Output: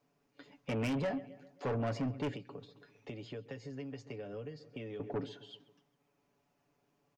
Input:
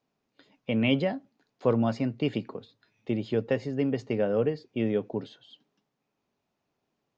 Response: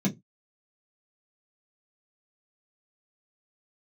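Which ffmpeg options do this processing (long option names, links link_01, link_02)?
-filter_complex "[0:a]aecho=1:1:7:0.64,acompressor=threshold=-36dB:ratio=1.5,asplit=2[link_01][link_02];[link_02]adelay=133,lowpass=frequency=4300:poles=1,volume=-21dB,asplit=2[link_03][link_04];[link_04]adelay=133,lowpass=frequency=4300:poles=1,volume=0.52,asplit=2[link_05][link_06];[link_06]adelay=133,lowpass=frequency=4300:poles=1,volume=0.52,asplit=2[link_07][link_08];[link_08]adelay=133,lowpass=frequency=4300:poles=1,volume=0.52[link_09];[link_01][link_03][link_05][link_07][link_09]amix=inputs=5:normalize=0,asettb=1/sr,asplit=3[link_10][link_11][link_12];[link_10]atrim=end=2.334[link_13];[link_11]atrim=start=2.33:end=5,asetpts=PTS-STARTPTS,afade=type=in:duration=0.004:curve=qsin,afade=type=out:start_time=2.666:duration=0.004:curve=qsin,acrossover=split=210|590|3400[link_14][link_15][link_16][link_17];[link_14]acompressor=threshold=-52dB:ratio=4[link_18];[link_15]acompressor=threshold=-52dB:ratio=4[link_19];[link_16]acompressor=threshold=-56dB:ratio=4[link_20];[link_17]acompressor=threshold=-58dB:ratio=4[link_21];[link_18][link_19][link_20][link_21]amix=inputs=4:normalize=0[link_22];[link_12]atrim=start=4.996[link_23];[link_13][link_22]acrossfade=duration=0.004:curve1=hsin:curve2=qsin[link_24];[link_24][link_23]acrossfade=duration=0.004:curve1=qsin:curve2=hsin,asoftclip=type=tanh:threshold=-32.5dB,equalizer=frequency=3800:width_type=o:width=0.61:gain=-5.5,volume=2dB"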